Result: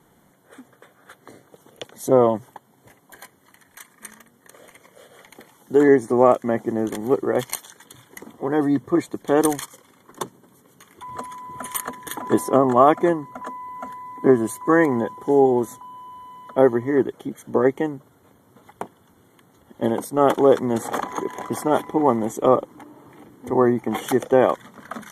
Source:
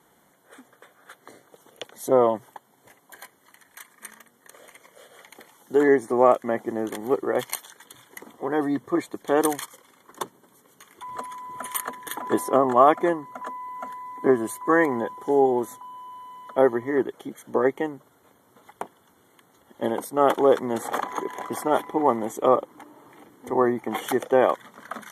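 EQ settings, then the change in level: dynamic bell 6.5 kHz, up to +4 dB, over -50 dBFS, Q 0.98; bass shelf 260 Hz +12 dB; 0.0 dB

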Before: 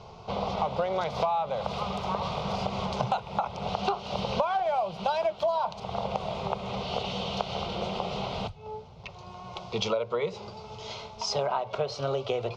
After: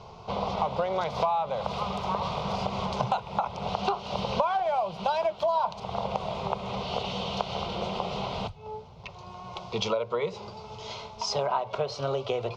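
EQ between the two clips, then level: peaking EQ 1 kHz +4.5 dB 0.2 oct; 0.0 dB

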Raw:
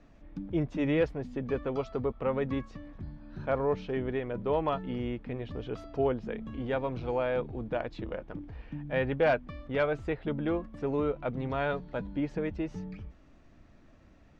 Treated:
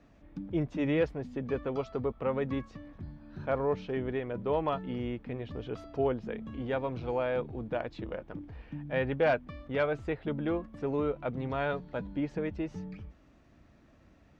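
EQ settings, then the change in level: high-pass 43 Hz; -1.0 dB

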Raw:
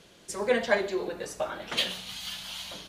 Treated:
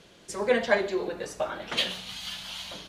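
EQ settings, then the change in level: treble shelf 9 kHz -8 dB; +1.5 dB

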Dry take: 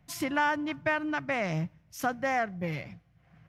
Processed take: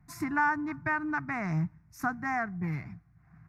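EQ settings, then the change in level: treble shelf 3.3 kHz -10.5 dB; static phaser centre 1.3 kHz, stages 4; +3.5 dB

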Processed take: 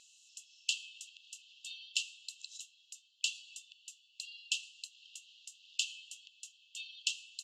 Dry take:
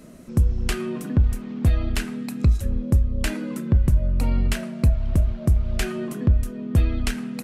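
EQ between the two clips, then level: brick-wall FIR high-pass 2.6 kHz; distance through air 160 m; peaking EQ 7.2 kHz +13.5 dB 0.34 oct; +4.0 dB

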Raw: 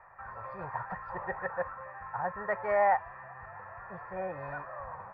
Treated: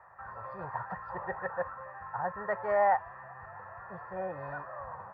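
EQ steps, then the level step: high-pass 54 Hz; peaking EQ 2.3 kHz -11.5 dB 0.25 oct; 0.0 dB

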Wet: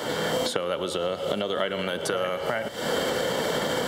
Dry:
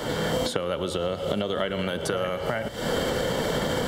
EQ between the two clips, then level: high-pass 300 Hz 6 dB/octave; +1.5 dB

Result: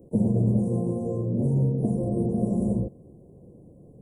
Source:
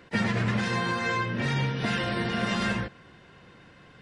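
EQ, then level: inverse Chebyshev band-stop 1.4–4.6 kHz, stop band 60 dB; +5.5 dB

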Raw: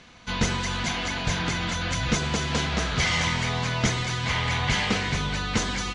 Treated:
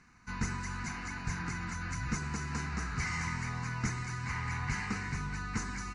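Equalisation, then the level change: static phaser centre 1.4 kHz, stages 4; -8.0 dB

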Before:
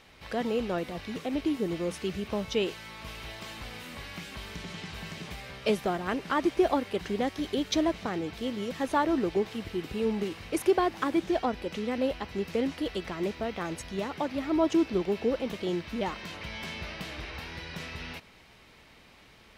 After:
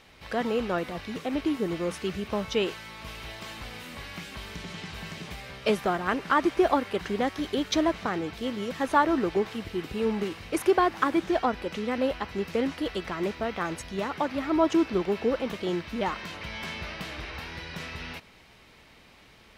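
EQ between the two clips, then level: dynamic bell 1.3 kHz, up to +6 dB, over -45 dBFS, Q 1.1; +1.0 dB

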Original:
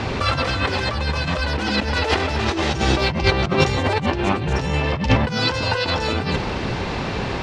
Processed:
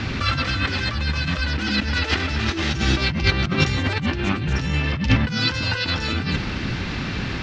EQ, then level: low-pass 6.9 kHz 24 dB/octave; high-order bell 640 Hz -10 dB; 0.0 dB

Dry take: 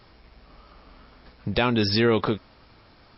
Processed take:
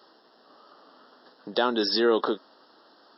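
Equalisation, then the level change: high-pass 280 Hz 24 dB/octave; Butterworth band-stop 2.3 kHz, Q 1.8; 0.0 dB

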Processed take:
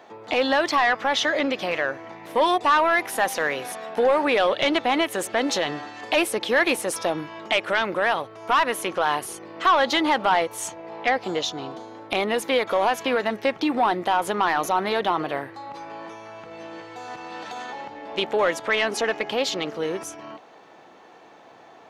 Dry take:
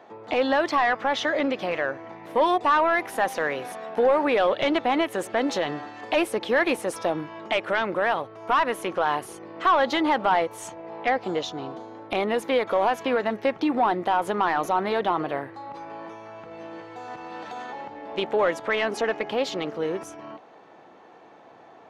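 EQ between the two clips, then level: treble shelf 2.5 kHz +9.5 dB; 0.0 dB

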